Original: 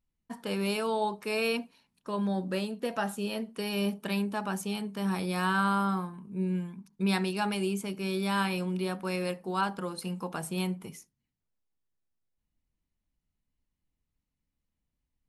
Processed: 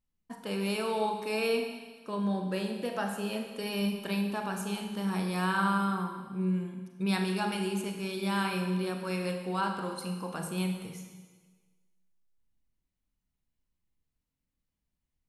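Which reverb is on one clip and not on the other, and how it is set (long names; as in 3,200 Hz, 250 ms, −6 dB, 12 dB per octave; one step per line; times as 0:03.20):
four-comb reverb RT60 1.4 s, combs from 33 ms, DRR 4 dB
level −2.5 dB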